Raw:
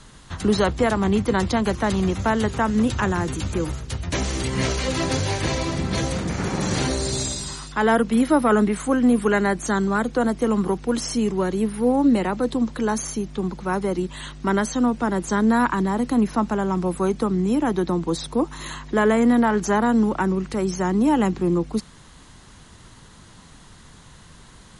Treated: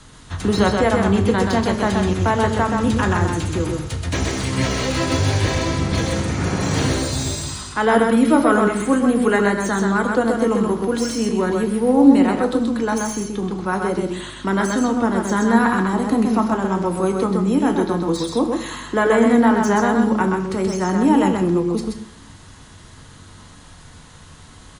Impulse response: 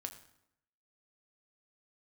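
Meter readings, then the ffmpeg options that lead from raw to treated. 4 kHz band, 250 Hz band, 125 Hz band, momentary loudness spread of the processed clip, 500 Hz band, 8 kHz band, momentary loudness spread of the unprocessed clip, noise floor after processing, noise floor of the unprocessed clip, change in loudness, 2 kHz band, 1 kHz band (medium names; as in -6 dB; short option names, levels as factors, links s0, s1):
+2.5 dB, +3.0 dB, +4.0 dB, 8 LU, +3.5 dB, +2.0 dB, 7 LU, -43 dBFS, -47 dBFS, +3.5 dB, +4.0 dB, +3.5 dB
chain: -filter_complex "[0:a]aecho=1:1:129:0.631[s0];[1:a]atrim=start_sample=2205[s1];[s0][s1]afir=irnorm=-1:irlink=0,acrossover=split=300|4100[s2][s3][s4];[s4]asoftclip=type=tanh:threshold=0.0224[s5];[s2][s3][s5]amix=inputs=3:normalize=0,volume=1.78"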